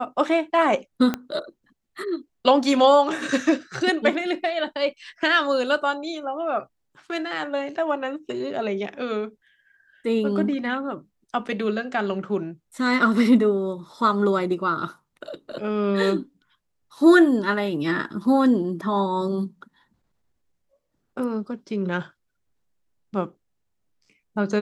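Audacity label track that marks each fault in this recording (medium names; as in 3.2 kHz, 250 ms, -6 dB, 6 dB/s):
1.140000	1.140000	pop -11 dBFS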